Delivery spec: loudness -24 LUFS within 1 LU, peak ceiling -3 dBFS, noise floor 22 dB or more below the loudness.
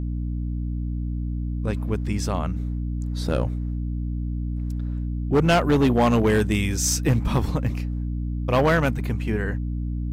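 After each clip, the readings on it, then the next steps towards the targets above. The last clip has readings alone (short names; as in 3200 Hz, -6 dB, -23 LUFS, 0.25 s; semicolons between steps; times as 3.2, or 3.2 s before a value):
clipped 1.2%; flat tops at -13.5 dBFS; hum 60 Hz; harmonics up to 300 Hz; hum level -25 dBFS; loudness -24.5 LUFS; peak -13.5 dBFS; loudness target -24.0 LUFS
-> clip repair -13.5 dBFS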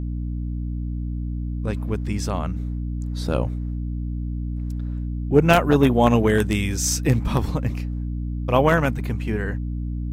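clipped 0.0%; hum 60 Hz; harmonics up to 300 Hz; hum level -24 dBFS
-> de-hum 60 Hz, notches 5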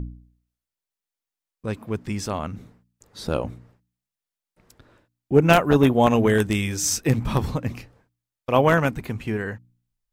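hum none; loudness -22.0 LUFS; peak -3.5 dBFS; loudness target -24.0 LUFS
-> gain -2 dB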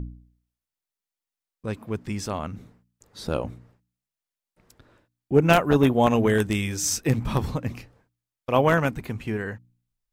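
loudness -24.0 LUFS; peak -5.5 dBFS; noise floor -90 dBFS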